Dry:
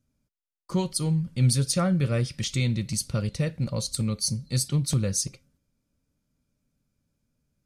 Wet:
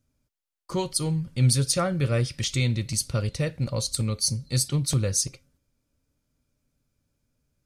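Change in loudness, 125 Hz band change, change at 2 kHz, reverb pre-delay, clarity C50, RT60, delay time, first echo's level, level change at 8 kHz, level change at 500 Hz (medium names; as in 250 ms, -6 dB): +1.0 dB, +0.5 dB, +2.5 dB, no reverb, no reverb, no reverb, no echo, no echo, +2.5 dB, +2.0 dB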